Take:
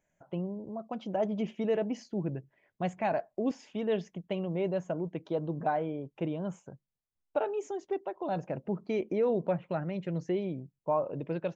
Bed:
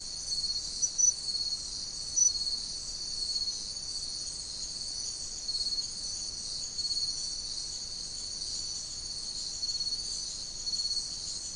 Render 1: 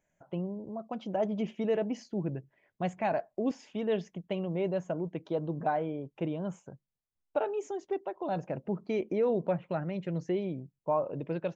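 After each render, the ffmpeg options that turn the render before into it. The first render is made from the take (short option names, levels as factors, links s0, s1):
-af anull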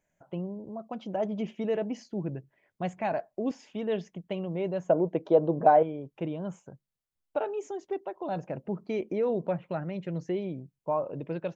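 -filter_complex "[0:a]asettb=1/sr,asplit=3[s0][s1][s2];[s0]atrim=end=4.894[s3];[s1]atrim=start=4.89:end=5.83,asetpts=PTS-STARTPTS,afade=t=in:d=0.004:c=qsin,afade=t=out:st=0.936:d=0.004:c=qsin,equalizer=f=560:w=0.64:g=12[s4];[s2]atrim=start=5.826[s5];[s3][s4]acrossfade=d=0.004:c1=hsin:c2=qsin[s6];[s6][s5]acrossfade=d=0.004:c1=qsin:c2=hsin"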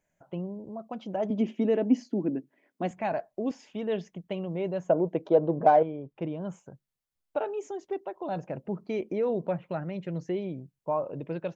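-filter_complex "[0:a]asettb=1/sr,asplit=3[s0][s1][s2];[s0]atrim=end=1.304[s3];[s1]atrim=start=1.3:end=2.91,asetpts=PTS-STARTPTS,afade=t=in:d=0.004:c=qsin,afade=t=out:st=1.606:d=0.004:c=qsin,highpass=f=260:t=q:w=4.9[s4];[s2]atrim=start=2.906[s5];[s3][s4]acrossfade=d=0.004:c1=hsin:c2=qsin[s6];[s6][s5]acrossfade=d=0.004:c1=qsin:c2=hsin,asettb=1/sr,asplit=3[s7][s8][s9];[s7]atrim=end=5.294[s10];[s8]atrim=start=5.29:end=6.41,asetpts=PTS-STARTPTS,afade=t=in:d=0.004:c=qsin,afade=t=out:st=1.116:d=0.004:c=qsin,adynamicsmooth=sensitivity=3.5:basefreq=3700[s11];[s9]atrim=start=6.406[s12];[s10][s11]acrossfade=d=0.004:c1=hsin:c2=qsin[s13];[s13][s12]acrossfade=d=0.004:c1=qsin:c2=hsin"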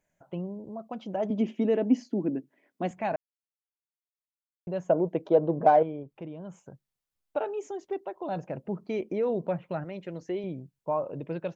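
-filter_complex "[0:a]asettb=1/sr,asplit=3[s0][s1][s2];[s0]atrim=end=6.034[s3];[s1]atrim=start=6.03:end=6.64,asetpts=PTS-STARTPTS,afade=t=in:d=0.004:c=qsin,afade=t=out:st=0.606:d=0.004:c=qsin,acompressor=threshold=0.00447:ratio=1.5:attack=3.2:release=140:knee=1:detection=peak[s4];[s2]atrim=start=6.636[s5];[s3][s4]acrossfade=d=0.004:c1=hsin:c2=qsin[s6];[s6][s5]acrossfade=d=0.004:c1=qsin:c2=hsin,asettb=1/sr,asplit=3[s7][s8][s9];[s7]atrim=end=9.844[s10];[s8]atrim=start=9.84:end=10.44,asetpts=PTS-STARTPTS,afade=t=in:d=0.004:c=qsin,afade=t=out:st=0.596:d=0.004:c=qsin,equalizer=f=140:w=1.5:g=-10.5[s11];[s9]atrim=start=10.436[s12];[s10][s11]acrossfade=d=0.004:c1=hsin:c2=qsin[s13];[s13][s12]acrossfade=d=0.004:c1=qsin:c2=hsin,asplit=3[s14][s15][s16];[s14]atrim=end=3.16,asetpts=PTS-STARTPTS,afade=t=out:st=3.156:d=0.004:c=hsin[s17];[s15]atrim=start=3.16:end=4.67,asetpts=PTS-STARTPTS,volume=0[s18];[s16]atrim=start=4.67,asetpts=PTS-STARTPTS,afade=t=in:d=0.004:c=hsin[s19];[s17][s18][s19]concat=n=3:v=0:a=1"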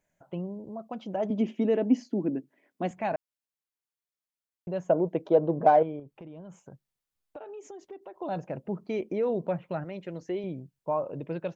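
-filter_complex "[0:a]asettb=1/sr,asplit=3[s0][s1][s2];[s0]atrim=end=5.994[s3];[s1]atrim=start=5.99:end=8.16,asetpts=PTS-STARTPTS,afade=t=in:d=0.004:c=qsin,afade=t=out:st=2.166:d=0.004:c=qsin,acompressor=threshold=0.01:ratio=6:attack=3.2:release=140:knee=1:detection=peak[s4];[s2]atrim=start=8.156[s5];[s3][s4]acrossfade=d=0.004:c1=hsin:c2=qsin[s6];[s6][s5]acrossfade=d=0.004:c1=qsin:c2=hsin"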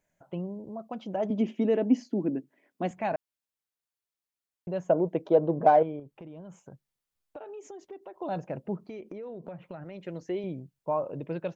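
-filter_complex "[0:a]asplit=3[s0][s1][s2];[s0]afade=t=out:st=8.76:d=0.02[s3];[s1]acompressor=threshold=0.0141:ratio=8:attack=3.2:release=140:knee=1:detection=peak,afade=t=in:st=8.76:d=0.02,afade=t=out:st=10.04:d=0.02[s4];[s2]afade=t=in:st=10.04:d=0.02[s5];[s3][s4][s5]amix=inputs=3:normalize=0"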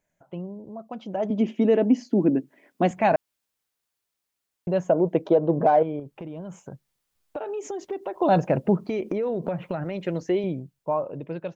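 -af "dynaudnorm=f=280:g=13:m=5.31,alimiter=limit=0.316:level=0:latency=1:release=287"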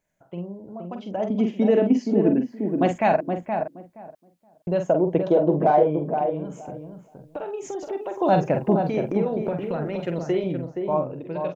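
-filter_complex "[0:a]asplit=2[s0][s1];[s1]adelay=46,volume=0.447[s2];[s0][s2]amix=inputs=2:normalize=0,asplit=2[s3][s4];[s4]adelay=472,lowpass=f=1200:p=1,volume=0.562,asplit=2[s5][s6];[s6]adelay=472,lowpass=f=1200:p=1,volume=0.18,asplit=2[s7][s8];[s8]adelay=472,lowpass=f=1200:p=1,volume=0.18[s9];[s3][s5][s7][s9]amix=inputs=4:normalize=0"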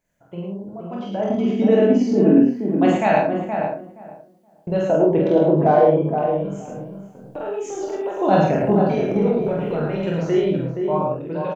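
-filter_complex "[0:a]asplit=2[s0][s1];[s1]adelay=25,volume=0.562[s2];[s0][s2]amix=inputs=2:normalize=0,asplit=2[s3][s4];[s4]aecho=0:1:46.65|107.9:0.891|0.708[s5];[s3][s5]amix=inputs=2:normalize=0"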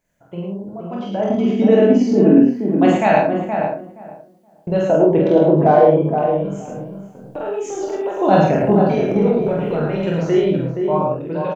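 -af "volume=1.41,alimiter=limit=0.891:level=0:latency=1"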